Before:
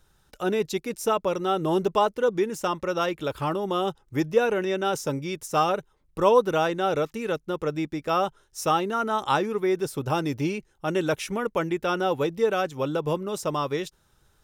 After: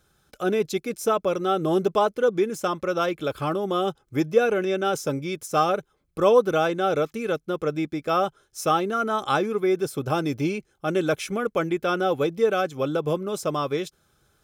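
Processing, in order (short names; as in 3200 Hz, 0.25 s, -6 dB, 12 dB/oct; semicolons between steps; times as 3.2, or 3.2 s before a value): notch comb 930 Hz; gain +2 dB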